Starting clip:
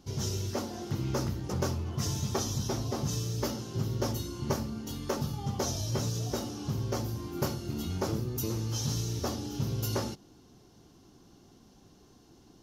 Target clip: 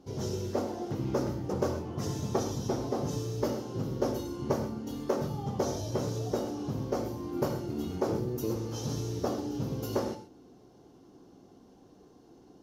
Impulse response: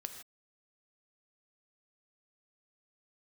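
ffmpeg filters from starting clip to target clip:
-filter_complex "[0:a]equalizer=frequency=460:width_type=o:width=2.9:gain=13.5[link_01];[1:a]atrim=start_sample=2205,asetrate=52920,aresample=44100[link_02];[link_01][link_02]afir=irnorm=-1:irlink=0,volume=-3.5dB"

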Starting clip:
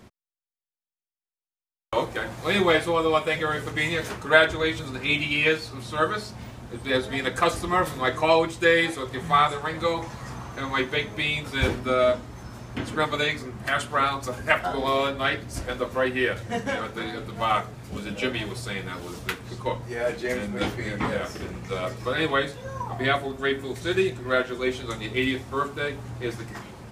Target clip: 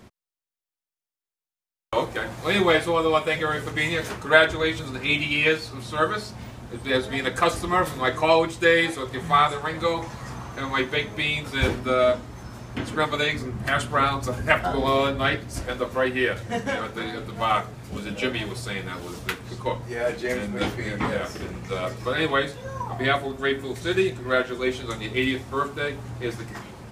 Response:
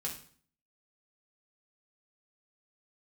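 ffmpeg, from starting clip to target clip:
-filter_complex "[0:a]asettb=1/sr,asplit=3[link_01][link_02][link_03];[link_01]atrim=end=13.334[link_04];[link_02]atrim=start=13.33:end=15.37,asetpts=PTS-STARTPTS,afade=type=in:duration=0.004:curve=qsin,afade=type=out:start_time=2.036:duration=0.004:curve=qsin,lowshelf=frequency=270:gain=7[link_05];[link_03]atrim=start=15.366[link_06];[link_04][link_05]acrossfade=duration=0.004:curve1=hsin:curve2=qsin[link_07];[link_07][link_06]acrossfade=duration=0.004:curve1=qsin:curve2=hsin,volume=1dB"

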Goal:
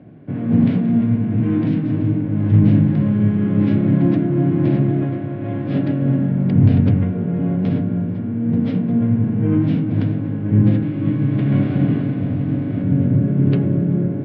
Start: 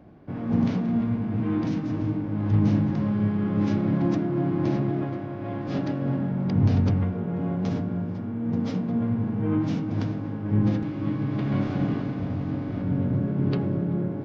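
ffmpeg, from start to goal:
ffmpeg -i in.wav -af "highpass=100,equalizer=frequency=110:width_type=q:width=4:gain=6,equalizer=frequency=150:width_type=q:width=4:gain=6,equalizer=frequency=260:width_type=q:width=4:gain=4,equalizer=frequency=860:width_type=q:width=4:gain=-8,equalizer=frequency=1200:width_type=q:width=4:gain=-7,lowpass=frequency=3400:width=0.5412,lowpass=frequency=3400:width=1.3066,volume=5.5dB" out.wav

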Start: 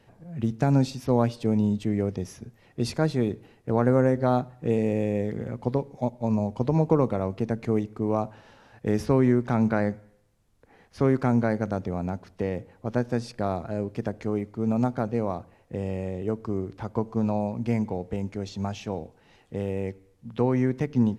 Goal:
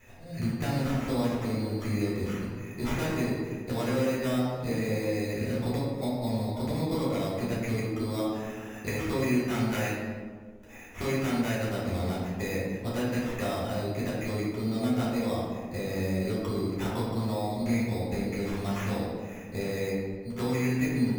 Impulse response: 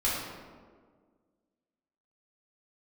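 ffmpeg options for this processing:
-filter_complex "[0:a]equalizer=frequency=1900:width=3.5:gain=13,acrossover=split=2900[link_01][link_02];[link_01]acompressor=threshold=-30dB:ratio=6[link_03];[link_03][link_02]amix=inputs=2:normalize=0,acrusher=samples=10:mix=1:aa=0.000001[link_04];[1:a]atrim=start_sample=2205[link_05];[link_04][link_05]afir=irnorm=-1:irlink=0,volume=-5dB"

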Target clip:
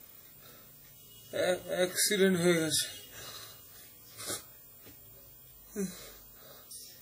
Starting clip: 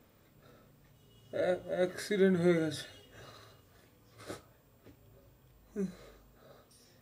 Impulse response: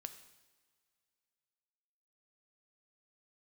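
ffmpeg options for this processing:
-af "crystalizer=i=6:c=0" -ar 48000 -c:a wmav2 -b:a 32k

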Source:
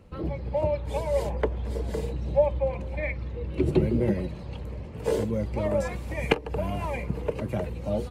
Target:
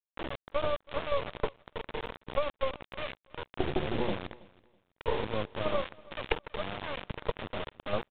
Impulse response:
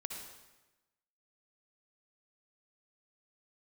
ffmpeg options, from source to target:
-filter_complex "[0:a]agate=range=-9dB:threshold=-25dB:ratio=16:detection=peak,equalizer=frequency=510:width=1.1:gain=7.5,bandreject=frequency=60:width_type=h:width=6,bandreject=frequency=120:width_type=h:width=6,bandreject=frequency=180:width_type=h:width=6,bandreject=frequency=240:width_type=h:width=6,bandreject=frequency=300:width_type=h:width=6,acompressor=threshold=-23dB:ratio=8,aresample=16000,acrusher=bits=3:dc=4:mix=0:aa=0.000001,aresample=44100,crystalizer=i=2:c=0,aresample=8000,aresample=44100,asplit=2[link_01][link_02];[link_02]aecho=0:1:326|652:0.0708|0.0156[link_03];[link_01][link_03]amix=inputs=2:normalize=0"

